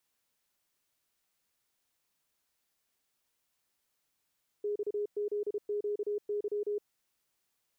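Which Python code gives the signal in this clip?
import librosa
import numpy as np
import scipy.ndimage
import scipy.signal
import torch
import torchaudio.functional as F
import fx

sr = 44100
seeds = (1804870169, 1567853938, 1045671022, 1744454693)

y = fx.morse(sr, text='XZQY', wpm=32, hz=414.0, level_db=-30.0)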